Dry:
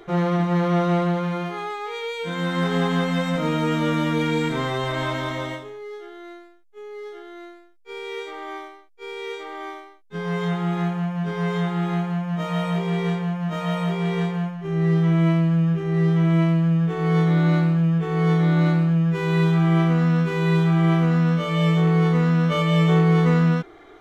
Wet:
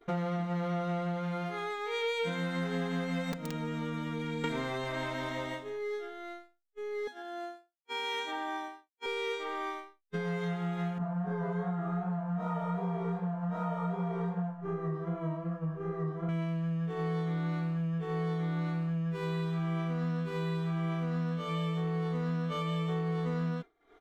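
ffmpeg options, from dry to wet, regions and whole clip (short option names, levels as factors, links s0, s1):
-filter_complex "[0:a]asettb=1/sr,asplit=3[s0][s1][s2];[s0]atrim=end=3.324[s3];[s1]atrim=start=3.32:end=4.44,asetpts=PTS-STARTPTS,afade=t=in:d=0.004:c=qsin,afade=t=out:st=1.116:d=0.004:c=qsin,acrossover=split=98|220[s4][s5][s6];[s4]acompressor=threshold=0.00355:ratio=4[s7];[s5]acompressor=threshold=0.0251:ratio=4[s8];[s6]acompressor=threshold=0.0158:ratio=4[s9];[s7][s8][s9]amix=inputs=3:normalize=0,aeval=exprs='(mod(11.2*val(0)+1,2)-1)/11.2':c=same[s10];[s2]atrim=start=4.436[s11];[s3][s10]acrossfade=d=0.004:c1=hsin:c2=qsin[s12];[s12][s11]acrossfade=d=0.004:c1=qsin:c2=hsin,asettb=1/sr,asplit=3[s13][s14][s15];[s13]atrim=end=7.074[s16];[s14]atrim=start=7.07:end=9.06,asetpts=PTS-STARTPTS,afade=t=in:d=0.004:c=qsin,afade=t=out:st=1.986:d=0.004:c=qsin,highpass=f=270:t=q:w=2.8,equalizer=f=2400:t=o:w=0.33:g=-4.5,aecho=1:1:1.2:0.96,atrim=end_sample=87759[s17];[s15]atrim=start=9.056[s18];[s16][s17]acrossfade=d=0.004:c1=hsin:c2=qsin[s19];[s19][s18]acrossfade=d=0.004:c1=qsin:c2=hsin,asettb=1/sr,asplit=3[s20][s21][s22];[s20]atrim=end=10.984[s23];[s21]atrim=start=10.98:end=16.29,asetpts=PTS-STARTPTS,afade=t=in:d=0.004:c=qsin,afade=t=out:st=5.306:d=0.004:c=qsin,highshelf=f=1800:t=q:w=1.5:g=-12.5,flanger=delay=16:depth=6.4:speed=2.6,asplit=2[s24][s25];[s25]adelay=33,volume=0.708[s26];[s24][s26]amix=inputs=2:normalize=0,atrim=end_sample=234171[s27];[s22]atrim=start=16.286[s28];[s23][s27]acrossfade=d=0.004:c1=hsin:c2=qsin[s29];[s29][s28]acrossfade=d=0.004:c1=qsin:c2=hsin,acompressor=threshold=0.02:ratio=6,agate=range=0.0224:threshold=0.0178:ratio=3:detection=peak,aecho=1:1:4.3:0.4,volume=1.26"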